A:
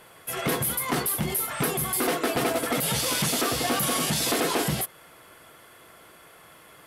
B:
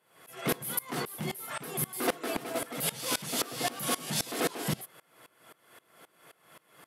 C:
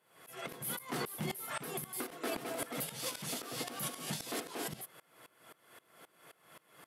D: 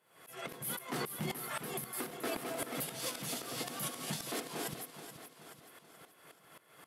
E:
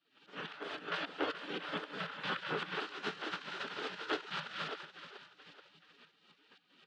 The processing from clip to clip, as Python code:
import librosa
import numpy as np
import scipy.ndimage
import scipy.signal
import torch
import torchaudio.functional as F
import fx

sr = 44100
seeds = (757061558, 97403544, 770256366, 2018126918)

y1 = scipy.signal.sosfilt(scipy.signal.butter(4, 120.0, 'highpass', fs=sr, output='sos'), x)
y1 = fx.tremolo_decay(y1, sr, direction='swelling', hz=3.8, depth_db=23)
y2 = fx.over_compress(y1, sr, threshold_db=-33.0, ratio=-0.5)
y2 = F.gain(torch.from_numpy(y2), -4.5).numpy()
y3 = fx.echo_feedback(y2, sr, ms=429, feedback_pct=50, wet_db=-11.0)
y4 = fx.spec_gate(y3, sr, threshold_db=-15, keep='weak')
y4 = fx.cabinet(y4, sr, low_hz=160.0, low_slope=24, high_hz=3400.0, hz=(170.0, 300.0, 430.0, 940.0, 1400.0, 2200.0), db=(9, 8, 10, -3, 7, -7))
y4 = F.gain(torch.from_numpy(y4), 10.5).numpy()